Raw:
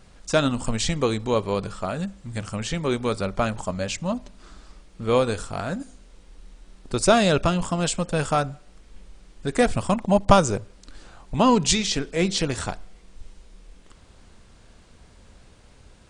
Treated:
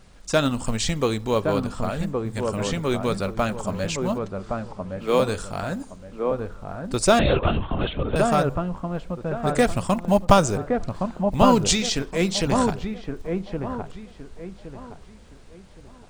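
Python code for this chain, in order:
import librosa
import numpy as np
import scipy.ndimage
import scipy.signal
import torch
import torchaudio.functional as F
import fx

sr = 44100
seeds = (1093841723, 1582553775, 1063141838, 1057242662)

y = fx.steep_highpass(x, sr, hz=230.0, slope=36, at=(4.17, 5.2))
y = fx.quant_float(y, sr, bits=4)
y = fx.echo_wet_lowpass(y, sr, ms=1117, feedback_pct=30, hz=1300.0, wet_db=-4.0)
y = fx.lpc_vocoder(y, sr, seeds[0], excitation='whisper', order=16, at=(7.19, 8.16))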